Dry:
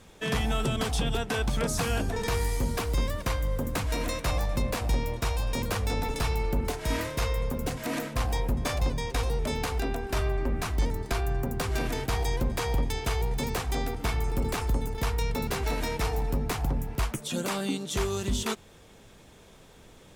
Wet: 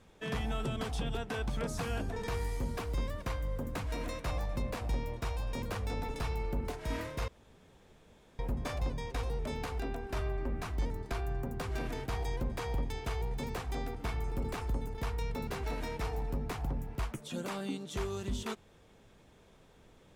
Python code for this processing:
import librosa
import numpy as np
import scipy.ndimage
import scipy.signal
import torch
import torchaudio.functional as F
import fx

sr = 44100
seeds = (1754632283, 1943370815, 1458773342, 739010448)

y = fx.edit(x, sr, fx.room_tone_fill(start_s=7.28, length_s=1.11), tone=tone)
y = fx.high_shelf(y, sr, hz=3900.0, db=-7.5)
y = F.gain(torch.from_numpy(y), -7.0).numpy()